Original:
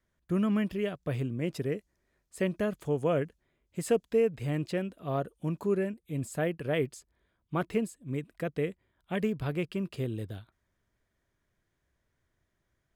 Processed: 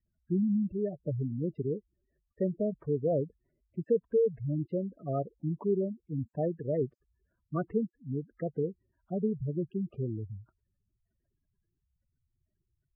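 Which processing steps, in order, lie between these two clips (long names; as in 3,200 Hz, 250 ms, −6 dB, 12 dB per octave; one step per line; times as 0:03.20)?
gate on every frequency bin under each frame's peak −10 dB strong
low-pass filter 1,600 Hz 24 dB per octave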